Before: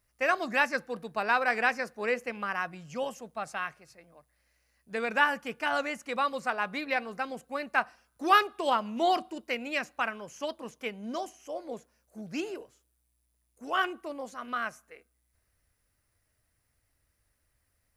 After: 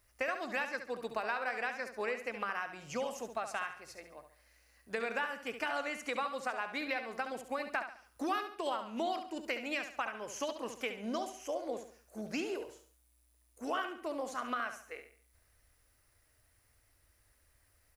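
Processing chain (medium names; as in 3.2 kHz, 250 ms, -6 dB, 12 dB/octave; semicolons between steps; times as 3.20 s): peaking EQ 170 Hz -12.5 dB 0.63 oct; compression 6:1, threshold -39 dBFS, peak gain reduction 20.5 dB; on a send: feedback delay 70 ms, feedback 38%, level -9 dB; on the sum: trim +5 dB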